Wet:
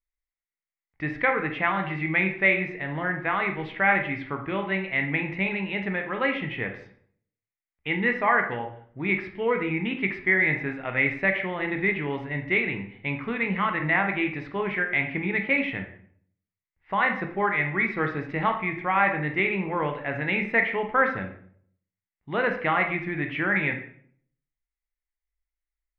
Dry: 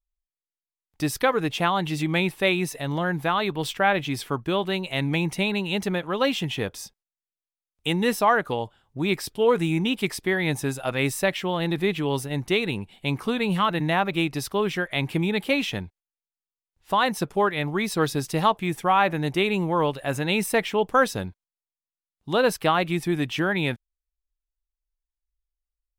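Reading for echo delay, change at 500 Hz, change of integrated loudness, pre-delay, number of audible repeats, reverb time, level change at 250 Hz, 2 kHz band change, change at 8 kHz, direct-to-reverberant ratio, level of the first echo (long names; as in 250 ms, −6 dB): no echo audible, −4.5 dB, −1.0 dB, 13 ms, no echo audible, 0.60 s, −4.0 dB, +4.5 dB, below −35 dB, 4.0 dB, no echo audible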